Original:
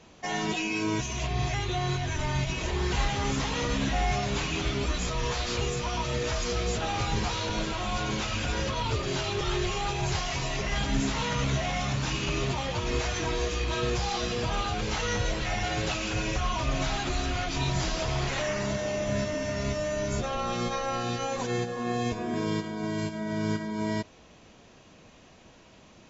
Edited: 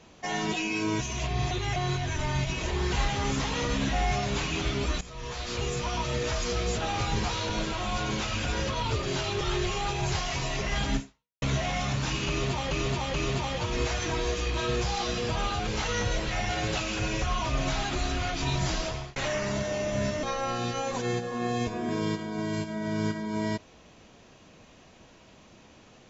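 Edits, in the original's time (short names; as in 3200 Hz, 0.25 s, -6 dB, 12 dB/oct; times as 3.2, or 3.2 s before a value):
1.51–1.76 reverse
5.01–5.78 fade in, from -17.5 dB
10.96–11.42 fade out exponential
12.28–12.71 loop, 3 plays
17.94–18.3 fade out
19.37–20.68 cut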